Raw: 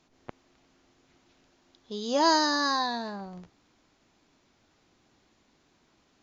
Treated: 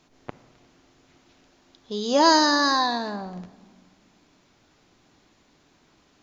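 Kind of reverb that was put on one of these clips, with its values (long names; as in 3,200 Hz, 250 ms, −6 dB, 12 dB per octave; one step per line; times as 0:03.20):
rectangular room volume 1,700 cubic metres, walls mixed, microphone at 0.37 metres
level +5.5 dB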